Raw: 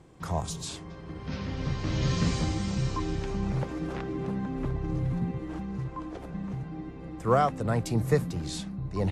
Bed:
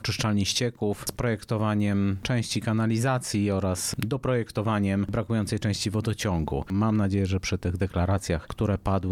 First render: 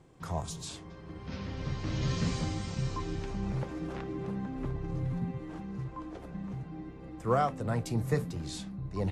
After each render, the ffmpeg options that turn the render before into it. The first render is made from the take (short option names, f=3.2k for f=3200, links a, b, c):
-af "flanger=delay=7.6:depth=2.3:regen=-73:speed=0.38:shape=sinusoidal"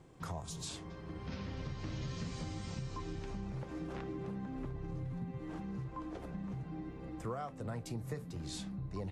-af "acompressor=threshold=-38dB:ratio=6"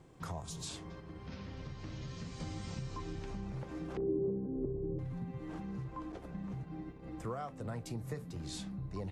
-filter_complex "[0:a]asettb=1/sr,asplit=3[a][b][c];[a]atrim=end=3.974[d];[b]atrim=start=3.97:end=4.99,asetpts=PTS-STARTPTS,afade=t=in:d=0.004:c=qsin,afade=t=out:st=1.016:d=0.004:c=qsin,lowpass=f=410:t=q:w=4.1[e];[c]atrim=start=4.986[f];[d][e]acrossfade=d=0.004:c1=hsin:c2=qsin[g];[g][f]acrossfade=d=0.004:c1=qsin:c2=hsin,asettb=1/sr,asplit=3[h][i][j];[h]atrim=end=6.124[k];[i]atrim=start=6.12:end=7.07,asetpts=PTS-STARTPTS,afade=t=in:d=0.004:c=qsin,afade=t=out:st=0.946:d=0.004:c=qsin,agate=range=-33dB:threshold=-43dB:ratio=3:release=100:detection=peak[l];[j]atrim=start=7.066[m];[k][l]acrossfade=d=0.004:c1=hsin:c2=qsin[n];[n][m]acrossfade=d=0.004:c1=qsin:c2=hsin,asplit=3[o][p][q];[o]atrim=end=1.002[r];[p]atrim=start=0.998:end=2.402,asetpts=PTS-STARTPTS,volume=-3.5dB[s];[q]atrim=start=2.398[t];[r][s]acrossfade=d=0.004:c1=hsin:c2=hsin[u];[u][t]acrossfade=d=0.004:c1=hsin:c2=hsin"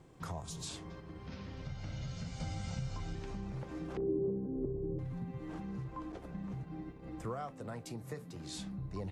-filter_complex "[0:a]asettb=1/sr,asplit=3[a][b][c];[a]atrim=end=1.654[d];[b]atrim=start=1.65:end=3.15,asetpts=PTS-STARTPTS,afade=t=in:d=0.004:c=qsin,afade=t=out:st=1.496:d=0.004:c=qsin,aecho=1:1:1.4:0.65,atrim=end_sample=66150[e];[c]atrim=start=3.146[f];[d][e]acrossfade=d=0.004:c1=hsin:c2=qsin[g];[g][f]acrossfade=d=0.004:c1=qsin:c2=hsin,asettb=1/sr,asplit=3[h][i][j];[h]atrim=end=7.524[k];[i]atrim=start=7.52:end=8.58,asetpts=PTS-STARTPTS,afade=t=in:d=0.004:c=qsin,afade=t=out:st=1.056:d=0.004:c=qsin,highpass=f=180:p=1[l];[j]atrim=start=8.576[m];[k][l]acrossfade=d=0.004:c1=hsin:c2=qsin[n];[n][m]acrossfade=d=0.004:c1=qsin:c2=hsin"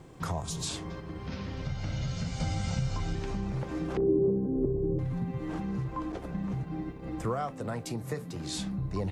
-af "volume=8.5dB"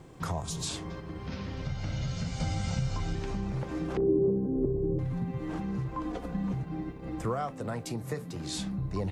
-filter_complex "[0:a]asettb=1/sr,asplit=3[a][b][c];[a]atrim=end=6.054[d];[b]atrim=start=6.05:end=6.52,asetpts=PTS-STARTPTS,afade=t=in:d=0.004:c=qsin,afade=t=out:st=0.466:d=0.004:c=qsin,aecho=1:1:4.1:0.65,atrim=end_sample=20727[e];[c]atrim=start=6.516[f];[d][e]acrossfade=d=0.004:c1=hsin:c2=qsin[g];[g][f]acrossfade=d=0.004:c1=qsin:c2=hsin"